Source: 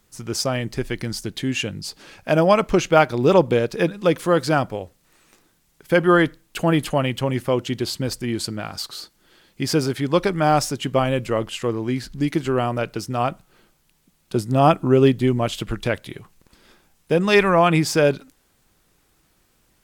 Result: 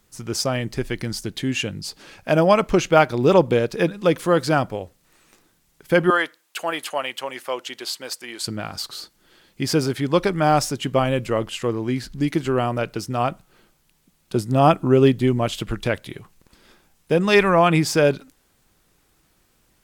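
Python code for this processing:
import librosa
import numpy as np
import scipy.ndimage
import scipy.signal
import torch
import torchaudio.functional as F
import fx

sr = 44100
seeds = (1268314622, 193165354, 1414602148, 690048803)

y = fx.highpass(x, sr, hz=700.0, slope=12, at=(6.1, 8.47))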